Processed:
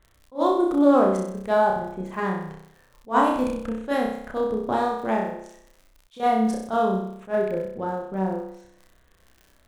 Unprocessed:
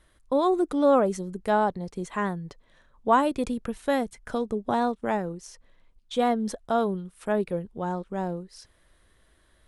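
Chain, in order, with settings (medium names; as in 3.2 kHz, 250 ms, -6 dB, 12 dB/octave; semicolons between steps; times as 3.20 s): local Wiener filter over 9 samples; 5.20–6.20 s: compression, threshold -34 dBFS, peak gain reduction 12.5 dB; crackle 25 per s -39 dBFS; on a send: flutter echo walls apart 5.4 m, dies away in 0.71 s; on the sum: attacks held to a fixed rise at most 300 dB/s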